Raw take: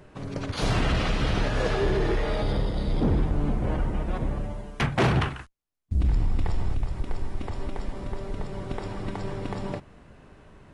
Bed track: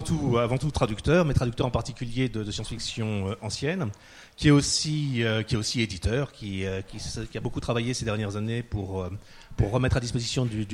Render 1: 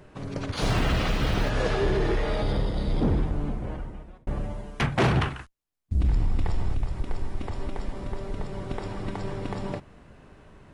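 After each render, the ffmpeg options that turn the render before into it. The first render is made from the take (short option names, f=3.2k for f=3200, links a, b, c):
-filter_complex "[0:a]asettb=1/sr,asplit=3[a][b][c];[a]atrim=end=0.554[d];[b]atrim=start=0.55:end=1.5,asetpts=PTS-STARTPTS,afade=t=in:d=0.004:c=qsin,afade=t=out:st=0.946:d=0.004:c=qsin,acrusher=bits=8:mode=log:mix=0:aa=0.000001[e];[c]atrim=start=1.496[f];[d][e]acrossfade=d=0.004:c1=hsin:c2=qsin[g];[g][f]acrossfade=d=0.004:c1=qsin:c2=hsin,asplit=2[h][i];[h]atrim=end=4.27,asetpts=PTS-STARTPTS,afade=t=out:st=3.03:d=1.24[j];[i]atrim=start=4.27,asetpts=PTS-STARTPTS,afade=t=in:d=0.004:c=hsin[k];[j][k]concat=n=2:v=0:a=1"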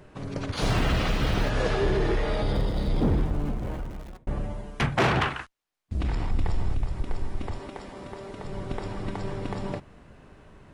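-filter_complex "[0:a]asettb=1/sr,asplit=3[a][b][c];[a]atrim=end=2.554[d];[b]atrim=start=2.55:end=4.17,asetpts=PTS-STARTPTS,afade=t=in:d=0.004:c=qsin,afade=t=out:st=1.616:d=0.004:c=qsin,aeval=exprs='val(0)+0.5*0.00794*sgn(val(0))':c=same[e];[c]atrim=start=4.166[f];[d][e]acrossfade=d=0.004:c1=hsin:c2=qsin[g];[g][f]acrossfade=d=0.004:c1=qsin:c2=hsin,asettb=1/sr,asplit=3[h][i][j];[h]atrim=end=4.974[k];[i]atrim=start=4.97:end=6.31,asetpts=PTS-STARTPTS,afade=t=in:d=0.004:c=qsin,afade=t=out:st=1.336:d=0.004:c=qsin,asplit=2[l][m];[m]highpass=f=720:p=1,volume=13dB,asoftclip=type=tanh:threshold=-15dB[n];[l][n]amix=inputs=2:normalize=0,lowpass=f=3.7k:p=1,volume=-6dB[o];[j]atrim=start=6.306[p];[k][o]acrossfade=d=0.004:c1=hsin:c2=qsin[q];[q][p]acrossfade=d=0.004:c1=qsin:c2=hsin,asettb=1/sr,asplit=3[r][s][t];[r]atrim=end=7.584[u];[s]atrim=start=7.58:end=8.45,asetpts=PTS-STARTPTS,afade=t=in:d=0.004:c=qsin,afade=t=out:st=0.866:d=0.004:c=qsin,highpass=f=270:p=1[v];[t]atrim=start=8.446[w];[u][v]acrossfade=d=0.004:c1=hsin:c2=qsin[x];[x][w]acrossfade=d=0.004:c1=qsin:c2=hsin"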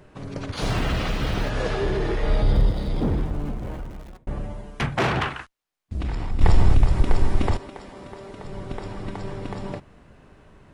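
-filter_complex "[0:a]asettb=1/sr,asplit=3[a][b][c];[a]atrim=end=2.234[d];[b]atrim=start=2.23:end=2.73,asetpts=PTS-STARTPTS,afade=t=in:d=0.004:c=qsin,afade=t=out:st=0.496:d=0.004:c=qsin,lowshelf=f=130:g=10[e];[c]atrim=start=2.726[f];[d][e]acrossfade=d=0.004:c1=hsin:c2=qsin[g];[g][f]acrossfade=d=0.004:c1=qsin:c2=hsin,asplit=3[h][i][j];[h]atrim=end=6.412[k];[i]atrim=start=6.408:end=7.572,asetpts=PTS-STARTPTS,volume=11dB[l];[j]atrim=start=7.568[m];[k][l]acrossfade=d=0.004:c1=hsin:c2=hsin[n];[n][m]acrossfade=d=0.004:c1=hsin:c2=hsin"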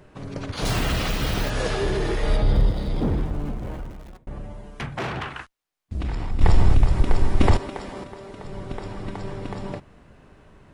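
-filter_complex "[0:a]asettb=1/sr,asplit=3[a][b][c];[a]atrim=end=0.654[d];[b]atrim=start=0.65:end=2.37,asetpts=PTS-STARTPTS,afade=t=in:d=0.004:c=qsin,afade=t=out:st=1.716:d=0.004:c=qsin,aemphasis=mode=production:type=50kf[e];[c]atrim=start=2.366[f];[d][e]acrossfade=d=0.004:c1=hsin:c2=qsin[g];[g][f]acrossfade=d=0.004:c1=qsin:c2=hsin,asettb=1/sr,asplit=3[h][i][j];[h]atrim=end=3.924[k];[i]atrim=start=3.92:end=5.36,asetpts=PTS-STARTPTS,afade=t=in:d=0.004:c=qsin,afade=t=out:st=1.436:d=0.004:c=qsin,acompressor=threshold=-38dB:ratio=1.5:attack=3.2:release=140:knee=1:detection=peak[l];[j]atrim=start=5.356[m];[k][l]acrossfade=d=0.004:c1=hsin:c2=qsin[n];[n][m]acrossfade=d=0.004:c1=qsin:c2=hsin,asettb=1/sr,asplit=3[o][p][q];[o]atrim=end=7.404[r];[p]atrim=start=7.4:end=8.04,asetpts=PTS-STARTPTS,afade=t=in:d=0.004:c=qsin,afade=t=out:st=0.636:d=0.004:c=qsin,acontrast=56[s];[q]atrim=start=8.036[t];[r][s]acrossfade=d=0.004:c1=hsin:c2=qsin[u];[u][t]acrossfade=d=0.004:c1=qsin:c2=hsin"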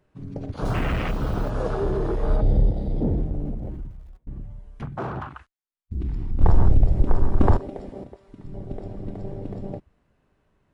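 -af "afwtdn=0.0398"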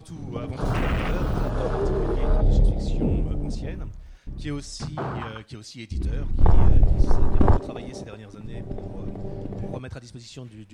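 -filter_complex "[1:a]volume=-13dB[a];[0:a][a]amix=inputs=2:normalize=0"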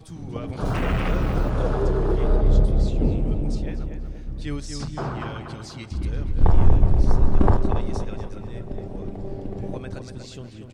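-filter_complex "[0:a]asplit=2[a][b];[b]adelay=239,lowpass=f=2.3k:p=1,volume=-6dB,asplit=2[c][d];[d]adelay=239,lowpass=f=2.3k:p=1,volume=0.55,asplit=2[e][f];[f]adelay=239,lowpass=f=2.3k:p=1,volume=0.55,asplit=2[g][h];[h]adelay=239,lowpass=f=2.3k:p=1,volume=0.55,asplit=2[i][j];[j]adelay=239,lowpass=f=2.3k:p=1,volume=0.55,asplit=2[k][l];[l]adelay=239,lowpass=f=2.3k:p=1,volume=0.55,asplit=2[m][n];[n]adelay=239,lowpass=f=2.3k:p=1,volume=0.55[o];[a][c][e][g][i][k][m][o]amix=inputs=8:normalize=0"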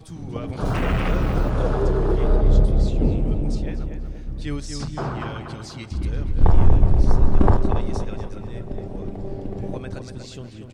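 -af "volume=1.5dB,alimiter=limit=-3dB:level=0:latency=1"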